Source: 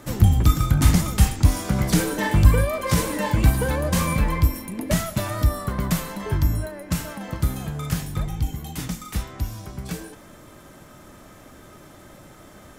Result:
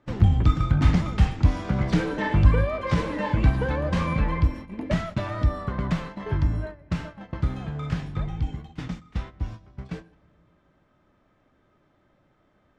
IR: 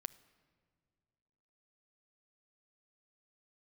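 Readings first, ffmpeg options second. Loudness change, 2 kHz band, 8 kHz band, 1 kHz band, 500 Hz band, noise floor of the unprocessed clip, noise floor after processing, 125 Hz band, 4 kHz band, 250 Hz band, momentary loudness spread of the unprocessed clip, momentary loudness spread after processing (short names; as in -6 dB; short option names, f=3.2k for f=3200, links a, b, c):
-2.5 dB, -3.0 dB, under -20 dB, -2.5 dB, -2.5 dB, -47 dBFS, -65 dBFS, -2.5 dB, -7.5 dB, -2.5 dB, 14 LU, 15 LU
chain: -filter_complex "[0:a]lowpass=3.2k,agate=range=-16dB:threshold=-32dB:ratio=16:detection=peak,asplit=2[a][b];[1:a]atrim=start_sample=2205,lowpass=8.4k[c];[b][c]afir=irnorm=-1:irlink=0,volume=1.5dB[d];[a][d]amix=inputs=2:normalize=0,volume=-7.5dB"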